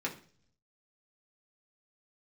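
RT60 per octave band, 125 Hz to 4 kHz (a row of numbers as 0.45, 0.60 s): 1.0, 0.70, 0.55, 0.40, 0.45, 0.55 s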